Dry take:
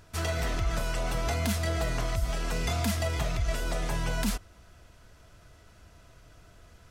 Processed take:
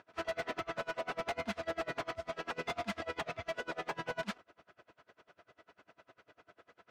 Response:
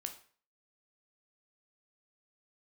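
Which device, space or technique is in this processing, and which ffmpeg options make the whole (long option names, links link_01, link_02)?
helicopter radio: -af "highpass=340,lowpass=2600,aeval=exprs='val(0)*pow(10,-30*(0.5-0.5*cos(2*PI*10*n/s))/20)':channel_layout=same,asoftclip=type=hard:threshold=-36dB,volume=5dB"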